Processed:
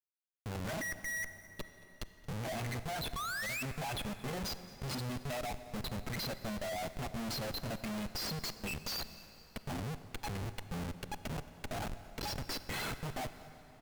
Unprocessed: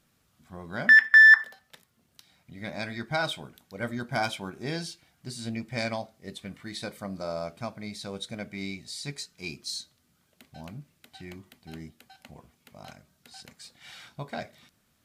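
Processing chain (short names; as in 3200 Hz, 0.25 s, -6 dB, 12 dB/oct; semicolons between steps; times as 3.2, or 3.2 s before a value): reverb removal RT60 1.8 s; spectral gate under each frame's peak -15 dB strong; high shelf 6600 Hz -12 dB; comb 1.6 ms, depth 83%; dynamic EQ 4600 Hz, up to +3 dB, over -47 dBFS, Q 1.6; compressor 4:1, threshold -42 dBFS, peak gain reduction 25.5 dB; flange 1.2 Hz, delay 6.5 ms, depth 3.7 ms, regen +38%; painted sound rise, 3.44–3.95, 1000–2500 Hz -41 dBFS; Schmitt trigger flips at -54.5 dBFS; echo 0.245 s -22 dB; on a send at -12 dB: reverb RT60 4.3 s, pre-delay 33 ms; on the sum: speed mistake 44.1 kHz file played as 48 kHz; gain +10.5 dB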